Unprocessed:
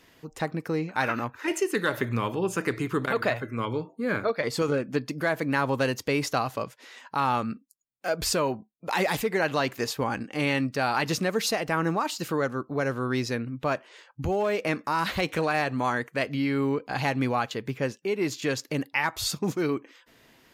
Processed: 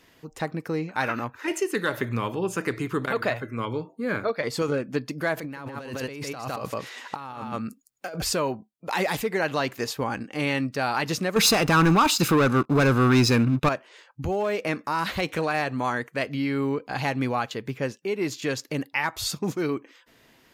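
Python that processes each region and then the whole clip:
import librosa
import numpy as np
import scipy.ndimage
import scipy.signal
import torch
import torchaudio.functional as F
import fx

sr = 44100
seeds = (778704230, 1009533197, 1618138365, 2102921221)

y = fx.chain(x, sr, fx.echo_single(ms=158, db=-7.0),
    fx.over_compress(threshold_db=-34.0, ratio=-1.0), at=(5.37, 8.22))
y = fx.chain(y, sr, fx.leveller(passes=3),
    fx.comb(ms=0.8, depth=0.38), at=(11.36, 13.69))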